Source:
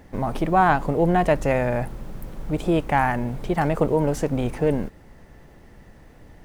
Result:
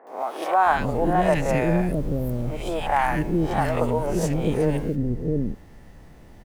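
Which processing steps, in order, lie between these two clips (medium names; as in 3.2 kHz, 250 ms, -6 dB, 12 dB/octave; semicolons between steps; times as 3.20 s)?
reverse spectral sustain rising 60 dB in 0.44 s; three bands offset in time mids, highs, lows 70/660 ms, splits 430/1700 Hz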